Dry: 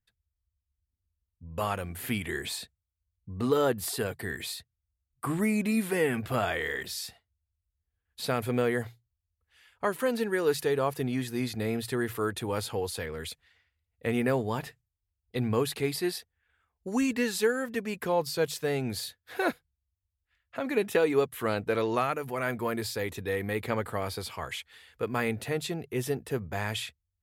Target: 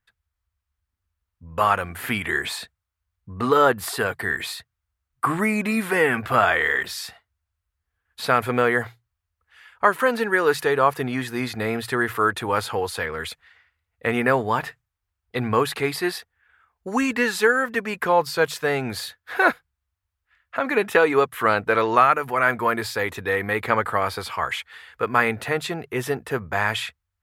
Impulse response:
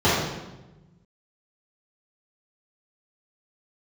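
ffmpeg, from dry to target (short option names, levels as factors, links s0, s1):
-af "equalizer=f=1300:t=o:w=2:g=13,volume=1.26"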